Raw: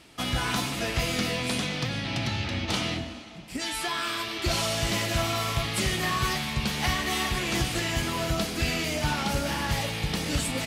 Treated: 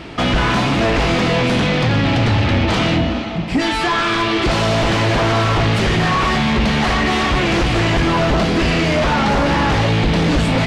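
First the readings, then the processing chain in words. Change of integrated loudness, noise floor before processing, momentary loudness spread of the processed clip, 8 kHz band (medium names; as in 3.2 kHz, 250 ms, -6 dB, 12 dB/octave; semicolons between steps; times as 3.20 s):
+11.5 dB, -40 dBFS, 1 LU, +0.5 dB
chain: treble shelf 7.7 kHz -7 dB; in parallel at +1 dB: compression, threshold -34 dBFS, peak gain reduction 12 dB; on the sum: feedback comb 56 Hz, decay 0.24 s, harmonics all, mix 60%; sine folder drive 9 dB, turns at -17.5 dBFS; tape spacing loss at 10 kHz 21 dB; trim +7.5 dB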